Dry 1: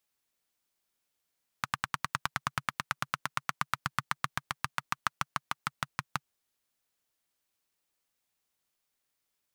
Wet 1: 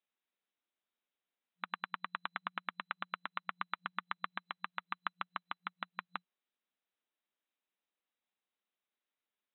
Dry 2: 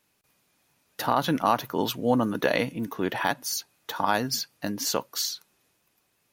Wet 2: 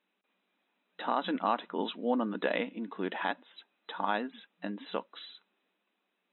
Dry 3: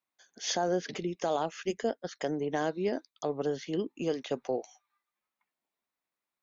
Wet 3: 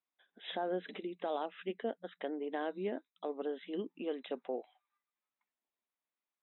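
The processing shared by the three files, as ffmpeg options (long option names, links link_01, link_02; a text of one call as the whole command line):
ffmpeg -i in.wav -af "afftfilt=real='re*between(b*sr/4096,180,4000)':imag='im*between(b*sr/4096,180,4000)':win_size=4096:overlap=0.75,volume=-6.5dB" out.wav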